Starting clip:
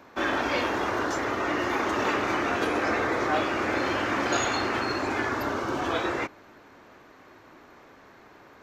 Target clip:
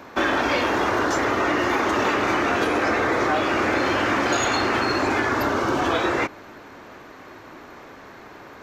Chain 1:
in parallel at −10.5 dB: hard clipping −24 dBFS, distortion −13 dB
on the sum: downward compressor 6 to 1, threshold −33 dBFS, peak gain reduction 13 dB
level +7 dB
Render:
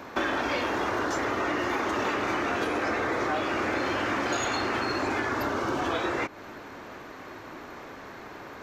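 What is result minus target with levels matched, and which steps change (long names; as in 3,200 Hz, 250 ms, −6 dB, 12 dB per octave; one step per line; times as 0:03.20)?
downward compressor: peak gain reduction +6.5 dB
change: downward compressor 6 to 1, threshold −25 dBFS, peak gain reduction 6 dB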